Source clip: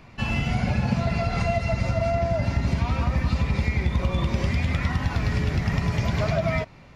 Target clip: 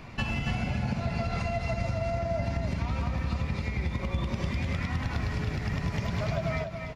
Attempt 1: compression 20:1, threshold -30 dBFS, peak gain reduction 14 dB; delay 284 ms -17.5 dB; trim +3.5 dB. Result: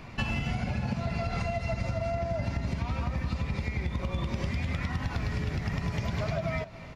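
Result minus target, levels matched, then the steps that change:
echo-to-direct -11.5 dB
change: delay 284 ms -6 dB

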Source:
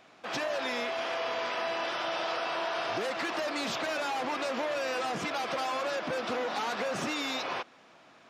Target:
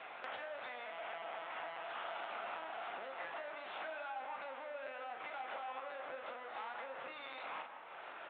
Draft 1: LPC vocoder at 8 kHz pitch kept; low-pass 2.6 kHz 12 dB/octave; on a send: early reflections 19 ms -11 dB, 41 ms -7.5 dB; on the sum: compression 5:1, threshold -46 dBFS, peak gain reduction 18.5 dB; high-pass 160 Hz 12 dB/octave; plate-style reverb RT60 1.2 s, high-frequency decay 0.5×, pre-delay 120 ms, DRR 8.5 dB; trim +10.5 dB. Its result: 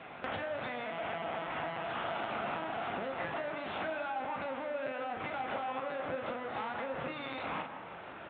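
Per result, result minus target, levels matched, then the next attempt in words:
125 Hz band +18.5 dB; compression: peak gain reduction -6 dB
LPC vocoder at 8 kHz pitch kept; low-pass 2.6 kHz 12 dB/octave; on a send: early reflections 19 ms -11 dB, 41 ms -7.5 dB; on the sum: compression 5:1, threshold -46 dBFS, peak gain reduction 18.5 dB; high-pass 590 Hz 12 dB/octave; plate-style reverb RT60 1.2 s, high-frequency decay 0.5×, pre-delay 120 ms, DRR 8.5 dB; trim +10.5 dB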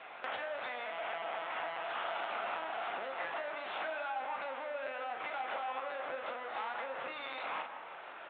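compression: peak gain reduction -6 dB
LPC vocoder at 8 kHz pitch kept; low-pass 2.6 kHz 12 dB/octave; on a send: early reflections 19 ms -11 dB, 41 ms -7.5 dB; on the sum: compression 5:1, threshold -53.5 dBFS, peak gain reduction 24.5 dB; high-pass 590 Hz 12 dB/octave; plate-style reverb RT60 1.2 s, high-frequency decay 0.5×, pre-delay 120 ms, DRR 8.5 dB; trim +10.5 dB

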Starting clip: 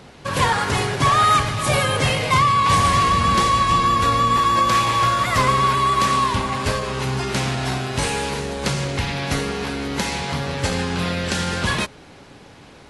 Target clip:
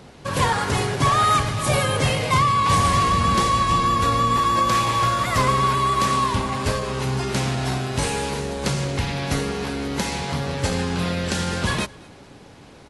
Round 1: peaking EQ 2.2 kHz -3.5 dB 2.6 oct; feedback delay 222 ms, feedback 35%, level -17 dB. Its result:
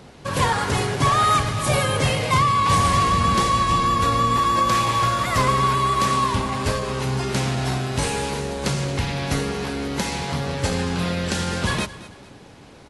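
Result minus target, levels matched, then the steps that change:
echo-to-direct +8.5 dB
change: feedback delay 222 ms, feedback 35%, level -25.5 dB

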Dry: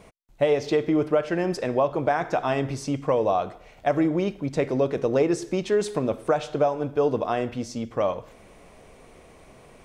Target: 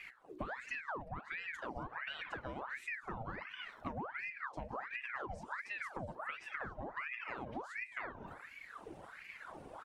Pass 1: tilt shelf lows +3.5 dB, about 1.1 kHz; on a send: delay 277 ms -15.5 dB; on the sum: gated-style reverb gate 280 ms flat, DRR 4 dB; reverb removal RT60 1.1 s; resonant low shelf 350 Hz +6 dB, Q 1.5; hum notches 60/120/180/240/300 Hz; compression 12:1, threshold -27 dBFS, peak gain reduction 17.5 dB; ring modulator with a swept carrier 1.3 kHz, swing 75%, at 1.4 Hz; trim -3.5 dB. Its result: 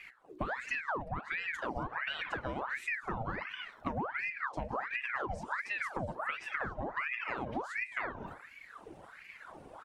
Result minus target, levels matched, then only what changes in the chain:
compression: peak gain reduction -6.5 dB
change: compression 12:1, threshold -34 dBFS, peak gain reduction 24 dB

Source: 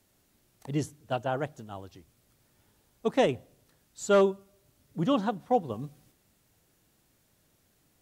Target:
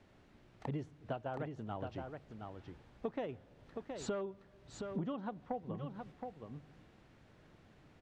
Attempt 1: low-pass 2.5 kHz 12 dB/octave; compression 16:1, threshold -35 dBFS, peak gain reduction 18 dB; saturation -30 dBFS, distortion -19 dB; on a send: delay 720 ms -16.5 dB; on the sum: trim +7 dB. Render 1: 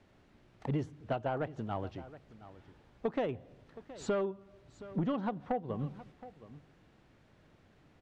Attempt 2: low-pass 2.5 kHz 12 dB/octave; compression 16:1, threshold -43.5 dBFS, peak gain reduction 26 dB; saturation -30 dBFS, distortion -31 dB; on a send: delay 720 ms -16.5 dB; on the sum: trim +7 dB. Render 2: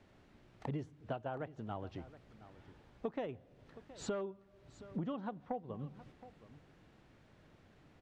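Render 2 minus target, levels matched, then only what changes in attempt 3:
echo-to-direct -11 dB
change: delay 720 ms -5.5 dB

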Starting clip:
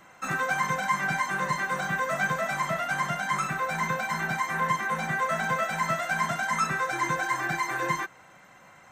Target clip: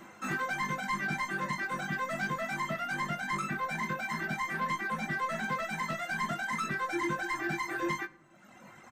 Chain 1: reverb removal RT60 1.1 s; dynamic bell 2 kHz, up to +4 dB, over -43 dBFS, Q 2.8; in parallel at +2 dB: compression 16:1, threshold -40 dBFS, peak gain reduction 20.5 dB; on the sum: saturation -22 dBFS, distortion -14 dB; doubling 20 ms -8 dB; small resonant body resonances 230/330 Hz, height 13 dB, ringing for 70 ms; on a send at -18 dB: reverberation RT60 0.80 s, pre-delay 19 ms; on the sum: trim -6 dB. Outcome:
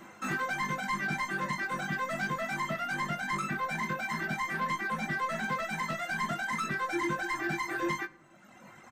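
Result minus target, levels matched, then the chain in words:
compression: peak gain reduction -10 dB
reverb removal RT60 1.1 s; dynamic bell 2 kHz, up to +4 dB, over -43 dBFS, Q 2.8; in parallel at +2 dB: compression 16:1, threshold -50.5 dBFS, peak gain reduction 30.5 dB; on the sum: saturation -22 dBFS, distortion -15 dB; doubling 20 ms -8 dB; small resonant body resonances 230/330 Hz, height 13 dB, ringing for 70 ms; on a send at -18 dB: reverberation RT60 0.80 s, pre-delay 19 ms; on the sum: trim -6 dB

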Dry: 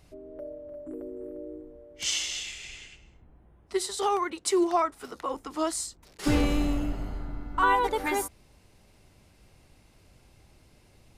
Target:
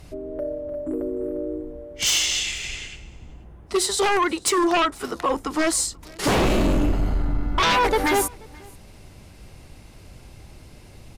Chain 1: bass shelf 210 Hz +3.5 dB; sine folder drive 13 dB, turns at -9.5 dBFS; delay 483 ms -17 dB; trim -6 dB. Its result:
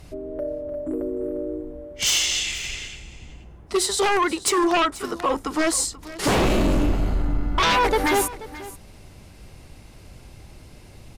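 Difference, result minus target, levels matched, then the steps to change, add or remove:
echo-to-direct +9 dB
change: delay 483 ms -26 dB

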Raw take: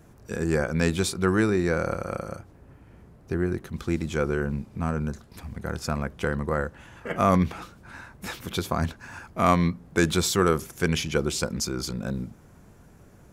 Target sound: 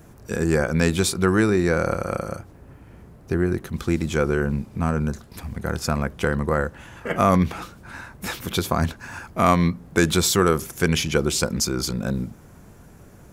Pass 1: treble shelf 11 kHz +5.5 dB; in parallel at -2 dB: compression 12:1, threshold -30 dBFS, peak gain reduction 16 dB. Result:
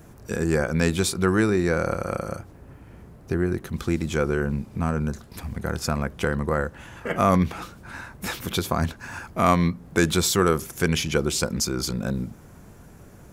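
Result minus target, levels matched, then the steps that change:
compression: peak gain reduction +8 dB
change: compression 12:1, threshold -21.5 dBFS, peak gain reduction 8.5 dB

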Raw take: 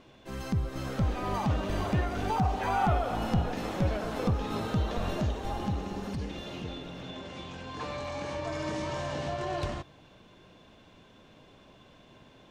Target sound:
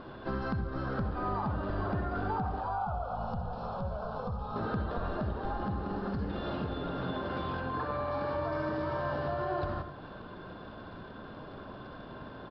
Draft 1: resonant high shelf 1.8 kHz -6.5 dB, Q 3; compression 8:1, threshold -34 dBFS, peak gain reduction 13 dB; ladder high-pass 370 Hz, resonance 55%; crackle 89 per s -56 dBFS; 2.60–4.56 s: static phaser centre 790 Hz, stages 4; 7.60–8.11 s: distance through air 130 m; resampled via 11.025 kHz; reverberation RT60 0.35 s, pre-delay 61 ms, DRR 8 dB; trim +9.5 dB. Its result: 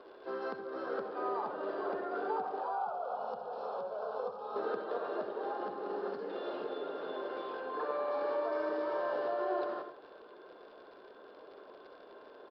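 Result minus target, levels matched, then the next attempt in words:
compression: peak gain reduction -6 dB; 500 Hz band +4.0 dB
resonant high shelf 1.8 kHz -6.5 dB, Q 3; compression 8:1, threshold -41 dBFS, peak gain reduction 19.5 dB; crackle 89 per s -56 dBFS; 2.60–4.56 s: static phaser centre 790 Hz, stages 4; 7.60–8.11 s: distance through air 130 m; resampled via 11.025 kHz; reverberation RT60 0.35 s, pre-delay 61 ms, DRR 8 dB; trim +9.5 dB

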